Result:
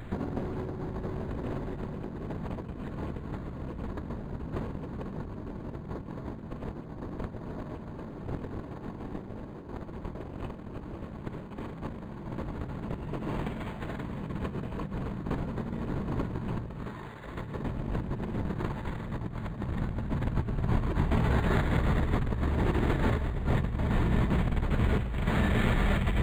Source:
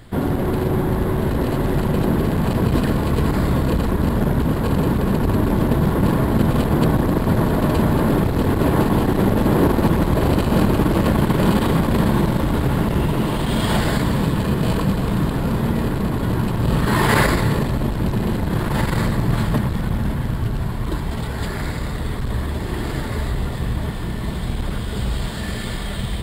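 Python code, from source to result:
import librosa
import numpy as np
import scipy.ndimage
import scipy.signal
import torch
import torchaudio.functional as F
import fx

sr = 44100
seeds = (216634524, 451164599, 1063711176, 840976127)

y = fx.over_compress(x, sr, threshold_db=-25.0, ratio=-0.5)
y = np.interp(np.arange(len(y)), np.arange(len(y))[::8], y[::8])
y = y * 10.0 ** (-5.5 / 20.0)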